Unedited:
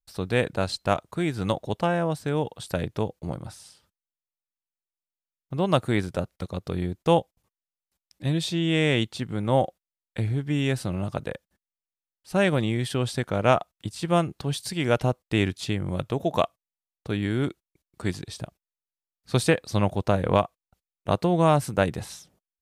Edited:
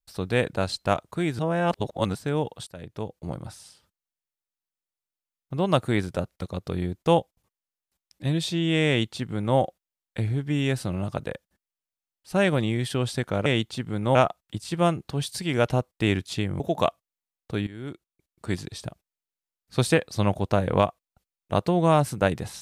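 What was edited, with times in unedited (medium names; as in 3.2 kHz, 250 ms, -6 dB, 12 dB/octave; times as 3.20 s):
1.39–2.15 s: reverse
2.67–3.40 s: fade in, from -21.5 dB
8.88–9.57 s: copy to 13.46 s
15.91–16.16 s: delete
17.23–18.12 s: fade in linear, from -18 dB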